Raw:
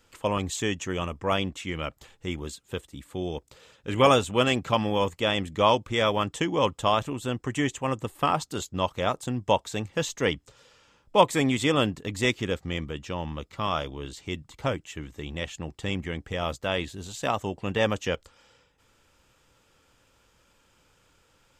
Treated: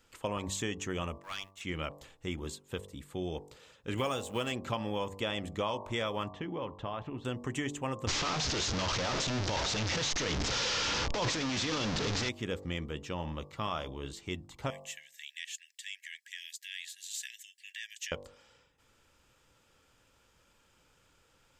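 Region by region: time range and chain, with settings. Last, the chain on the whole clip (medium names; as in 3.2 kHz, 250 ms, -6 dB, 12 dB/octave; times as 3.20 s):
1.18–1.61 s: companding laws mixed up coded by A + high-pass 1.4 kHz + valve stage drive 23 dB, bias 0.8
3.97–4.52 s: companding laws mixed up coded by A + treble shelf 6.1 kHz +6.5 dB + tape noise reduction on one side only encoder only
6.30–7.25 s: compression 3:1, threshold -30 dBFS + distance through air 290 m + tape noise reduction on one side only decoder only
8.07–12.29 s: one-bit delta coder 32 kbps, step -17 dBFS + treble shelf 5 kHz +10 dB + transient shaper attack -12 dB, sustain +8 dB
14.70–18.12 s: treble shelf 6.3 kHz +9 dB + compression, threshold -29 dBFS + brick-wall FIR high-pass 1.6 kHz
whole clip: de-hum 48.39 Hz, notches 24; compression 5:1, threshold -27 dBFS; trim -3.5 dB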